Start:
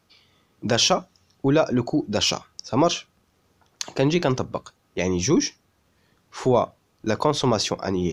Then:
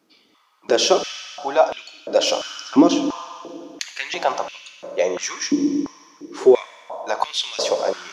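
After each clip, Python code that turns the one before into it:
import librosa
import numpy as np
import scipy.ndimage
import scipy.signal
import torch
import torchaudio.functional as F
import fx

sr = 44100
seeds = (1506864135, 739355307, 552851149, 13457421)

y = fx.rev_fdn(x, sr, rt60_s=2.5, lf_ratio=1.6, hf_ratio=0.85, size_ms=31.0, drr_db=6.5)
y = fx.filter_held_highpass(y, sr, hz=2.9, low_hz=280.0, high_hz=2800.0)
y = y * 10.0 ** (-1.0 / 20.0)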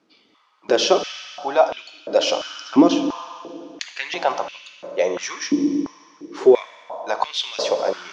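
y = scipy.signal.sosfilt(scipy.signal.butter(2, 5300.0, 'lowpass', fs=sr, output='sos'), x)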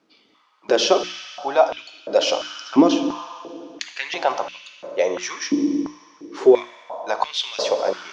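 y = fx.hum_notches(x, sr, base_hz=60, count=6)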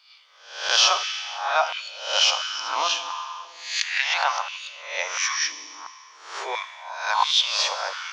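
y = fx.spec_swells(x, sr, rise_s=0.6)
y = scipy.signal.sosfilt(scipy.signal.butter(4, 1000.0, 'highpass', fs=sr, output='sos'), y)
y = y * 10.0 ** (2.5 / 20.0)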